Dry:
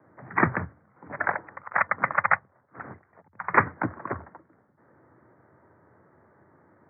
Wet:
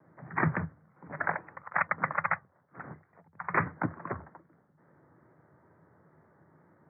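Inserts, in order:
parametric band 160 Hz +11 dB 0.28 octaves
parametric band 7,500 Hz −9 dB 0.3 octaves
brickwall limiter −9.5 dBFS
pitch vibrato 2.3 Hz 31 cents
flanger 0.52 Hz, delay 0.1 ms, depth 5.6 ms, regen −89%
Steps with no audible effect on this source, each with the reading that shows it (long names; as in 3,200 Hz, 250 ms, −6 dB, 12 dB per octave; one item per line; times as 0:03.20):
parametric band 7,500 Hz: nothing at its input above 2,600 Hz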